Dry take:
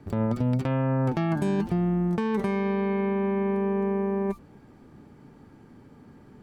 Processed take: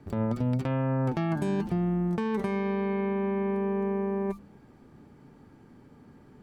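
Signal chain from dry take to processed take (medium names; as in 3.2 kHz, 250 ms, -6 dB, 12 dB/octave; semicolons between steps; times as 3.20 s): de-hum 101.6 Hz, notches 3; trim -2.5 dB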